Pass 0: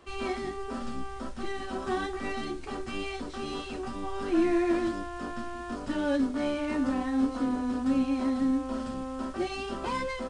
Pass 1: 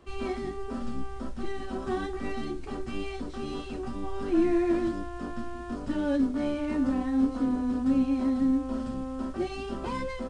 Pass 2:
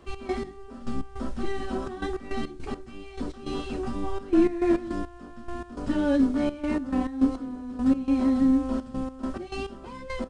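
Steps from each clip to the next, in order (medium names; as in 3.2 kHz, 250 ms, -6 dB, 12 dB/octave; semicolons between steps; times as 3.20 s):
bass shelf 420 Hz +9 dB; trim -4.5 dB
trance gate "x.x...x.xxxxx.x." 104 bpm -12 dB; trim +4 dB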